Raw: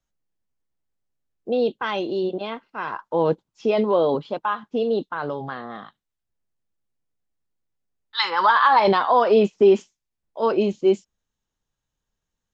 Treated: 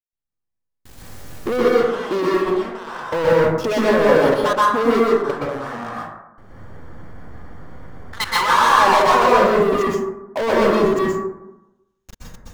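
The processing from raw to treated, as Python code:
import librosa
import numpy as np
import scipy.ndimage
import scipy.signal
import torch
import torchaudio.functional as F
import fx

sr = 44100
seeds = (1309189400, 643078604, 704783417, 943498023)

y = fx.recorder_agc(x, sr, target_db=-16.0, rise_db_per_s=33.0, max_gain_db=30)
y = fx.dynamic_eq(y, sr, hz=800.0, q=5.2, threshold_db=-35.0, ratio=4.0, max_db=-5)
y = fx.savgol(y, sr, points=41, at=(5.7, 8.2), fade=0.02)
y = fx.peak_eq(y, sr, hz=80.0, db=5.0, octaves=0.28)
y = fx.level_steps(y, sr, step_db=24)
y = fx.leveller(y, sr, passes=5)
y = fx.rev_plate(y, sr, seeds[0], rt60_s=0.95, hf_ratio=0.35, predelay_ms=110, drr_db=-6.5)
y = y * 10.0 ** (-6.0 / 20.0)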